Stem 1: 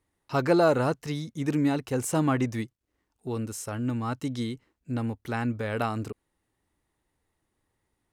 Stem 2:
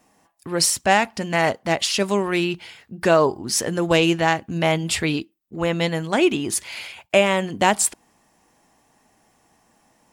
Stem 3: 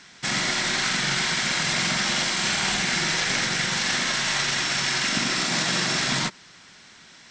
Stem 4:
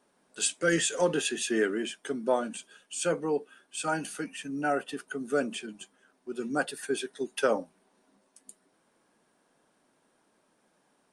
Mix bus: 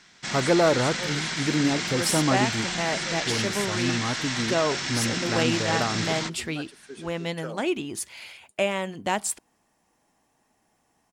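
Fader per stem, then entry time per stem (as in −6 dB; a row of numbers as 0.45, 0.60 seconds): +1.0, −8.5, −6.0, −12.0 decibels; 0.00, 1.45, 0.00, 0.00 seconds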